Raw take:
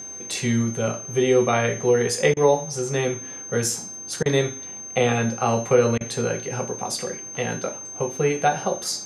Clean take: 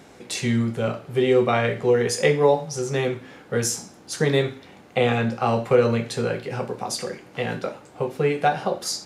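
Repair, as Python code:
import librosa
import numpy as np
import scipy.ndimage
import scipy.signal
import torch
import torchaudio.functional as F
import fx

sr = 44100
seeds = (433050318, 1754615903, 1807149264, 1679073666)

y = fx.notch(x, sr, hz=6300.0, q=30.0)
y = fx.fix_interpolate(y, sr, at_s=(2.34, 4.23, 5.98), length_ms=26.0)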